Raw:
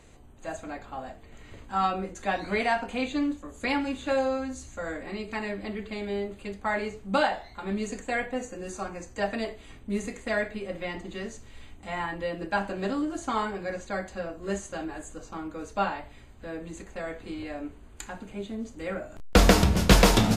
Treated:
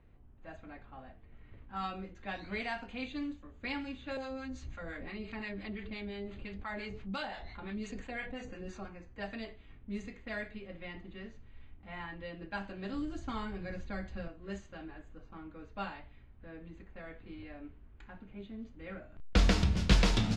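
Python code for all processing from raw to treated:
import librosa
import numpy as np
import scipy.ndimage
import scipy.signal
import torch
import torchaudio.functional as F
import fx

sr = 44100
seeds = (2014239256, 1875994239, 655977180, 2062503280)

y = fx.chain(x, sr, fx.clip_hard(threshold_db=-14.0),
    fx.harmonic_tremolo(hz=5.8, depth_pct=70, crossover_hz=770.0),
    fx.env_flatten(amount_pct=50), at=(4.17, 8.85))
y = fx.chain(y, sr, fx.low_shelf(hz=180.0, db=11.0),
    fx.band_squash(depth_pct=40), at=(12.93, 14.28))
y = scipy.signal.sosfilt(scipy.signal.butter(2, 4600.0, 'lowpass', fs=sr, output='sos'), y)
y = fx.env_lowpass(y, sr, base_hz=1500.0, full_db=-21.0)
y = fx.peak_eq(y, sr, hz=650.0, db=-10.0, octaves=3.0)
y = F.gain(torch.from_numpy(y), -4.5).numpy()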